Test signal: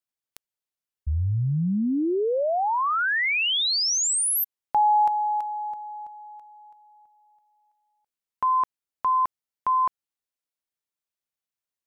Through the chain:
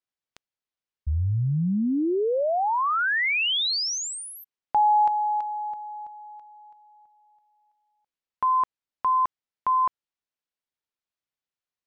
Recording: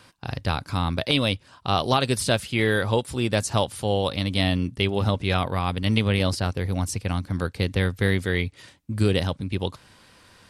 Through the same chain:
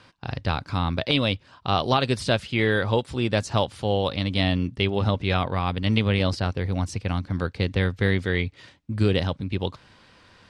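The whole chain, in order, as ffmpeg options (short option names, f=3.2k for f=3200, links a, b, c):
-af "lowpass=5k"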